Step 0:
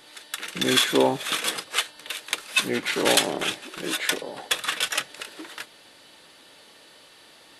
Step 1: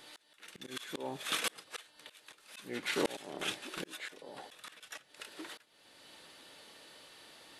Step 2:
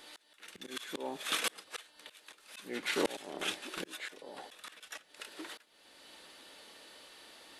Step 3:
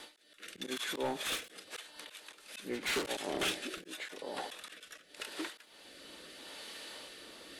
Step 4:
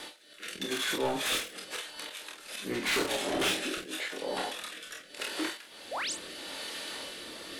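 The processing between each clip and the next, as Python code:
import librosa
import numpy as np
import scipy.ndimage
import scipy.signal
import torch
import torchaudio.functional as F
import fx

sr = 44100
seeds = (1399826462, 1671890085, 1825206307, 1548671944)

y1 = fx.auto_swell(x, sr, attack_ms=550.0)
y1 = F.gain(torch.from_numpy(y1), -4.5).numpy()
y2 = fx.peak_eq(y1, sr, hz=130.0, db=-15.0, octaves=0.4)
y2 = F.gain(torch.from_numpy(y2), 1.0).numpy()
y3 = np.clip(10.0 ** (35.0 / 20.0) * y2, -1.0, 1.0) / 10.0 ** (35.0 / 20.0)
y3 = fx.rotary(y3, sr, hz=0.85)
y3 = fx.end_taper(y3, sr, db_per_s=160.0)
y3 = F.gain(torch.from_numpy(y3), 8.5).numpy()
y4 = 10.0 ** (-31.5 / 20.0) * np.tanh(y3 / 10.0 ** (-31.5 / 20.0))
y4 = fx.spec_paint(y4, sr, seeds[0], shape='rise', start_s=5.91, length_s=0.22, low_hz=460.0, high_hz=10000.0, level_db=-42.0)
y4 = fx.room_early_taps(y4, sr, ms=(26, 48), db=(-5.0, -7.0))
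y4 = F.gain(torch.from_numpy(y4), 6.5).numpy()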